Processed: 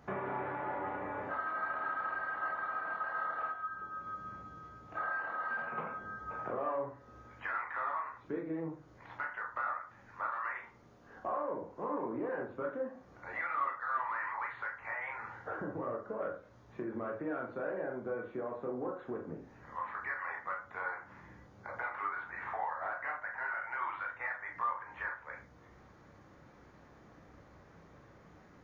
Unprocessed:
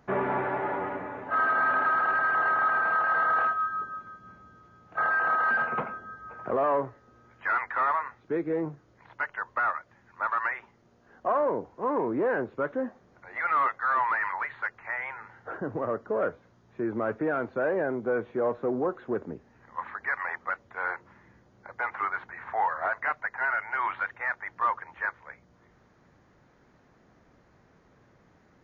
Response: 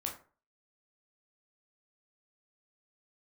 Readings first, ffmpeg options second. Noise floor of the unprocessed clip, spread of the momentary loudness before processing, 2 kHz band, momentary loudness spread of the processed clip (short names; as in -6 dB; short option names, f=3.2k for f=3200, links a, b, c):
-62 dBFS, 14 LU, -10.0 dB, 12 LU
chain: -filter_complex "[0:a]acompressor=threshold=-40dB:ratio=4[a];[1:a]atrim=start_sample=2205[b];[a][b]afir=irnorm=-1:irlink=0,volume=2dB"